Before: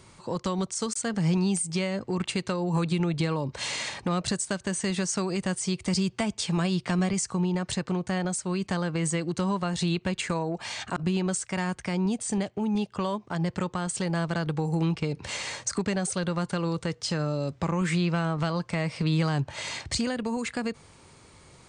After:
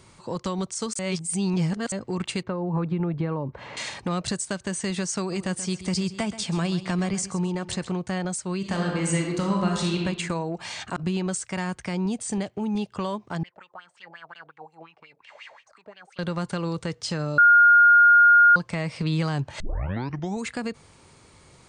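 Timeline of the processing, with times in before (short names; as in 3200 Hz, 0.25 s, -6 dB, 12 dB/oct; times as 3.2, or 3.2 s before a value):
0.99–1.92 reverse
2.43–3.77 LPF 1400 Hz
5.19–7.9 feedback echo 0.13 s, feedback 28%, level -14 dB
8.57–10 reverb throw, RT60 1.2 s, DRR 0 dB
13.43–16.19 wah 5.6 Hz 610–2900 Hz, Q 6.4
17.38–18.56 bleep 1420 Hz -11 dBFS
19.6 tape start 0.84 s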